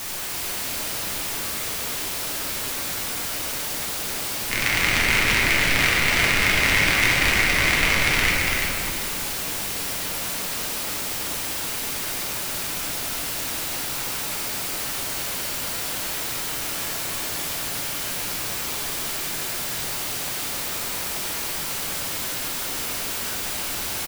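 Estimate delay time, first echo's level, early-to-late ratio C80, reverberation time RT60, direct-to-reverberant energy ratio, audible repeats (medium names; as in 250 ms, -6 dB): 338 ms, -4.5 dB, -1.5 dB, 2.7 s, -6.5 dB, 1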